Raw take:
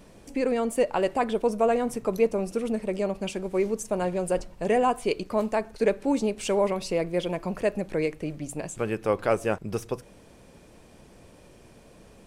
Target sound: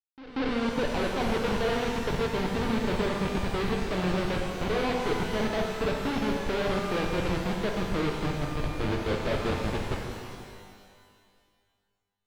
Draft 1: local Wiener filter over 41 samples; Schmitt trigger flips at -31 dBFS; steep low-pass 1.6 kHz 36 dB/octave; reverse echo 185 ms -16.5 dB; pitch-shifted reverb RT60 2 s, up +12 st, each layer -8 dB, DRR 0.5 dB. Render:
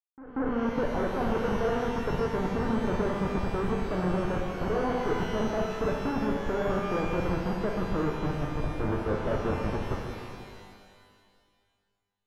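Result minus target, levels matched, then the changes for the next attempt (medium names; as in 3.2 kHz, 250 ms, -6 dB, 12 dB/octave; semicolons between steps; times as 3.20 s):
4 kHz band -8.0 dB
change: steep low-pass 4.5 kHz 36 dB/octave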